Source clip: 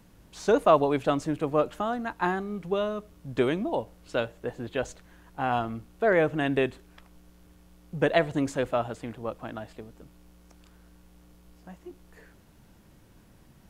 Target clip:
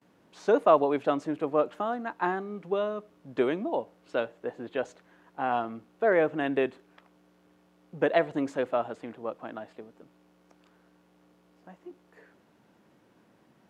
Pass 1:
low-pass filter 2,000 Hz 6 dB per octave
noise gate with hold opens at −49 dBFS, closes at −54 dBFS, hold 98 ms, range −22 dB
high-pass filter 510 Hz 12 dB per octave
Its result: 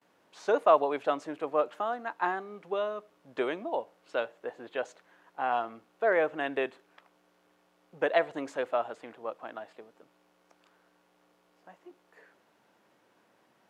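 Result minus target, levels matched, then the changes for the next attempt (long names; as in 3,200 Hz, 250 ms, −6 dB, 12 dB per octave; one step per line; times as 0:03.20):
250 Hz band −5.5 dB
change: high-pass filter 250 Hz 12 dB per octave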